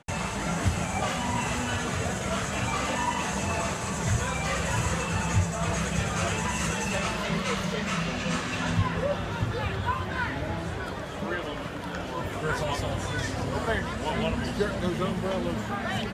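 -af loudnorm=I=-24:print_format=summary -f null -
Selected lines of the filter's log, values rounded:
Input Integrated:    -29.0 LUFS
Input True Peak:     -12.7 dBTP
Input LRA:             2.9 LU
Input Threshold:     -39.0 LUFS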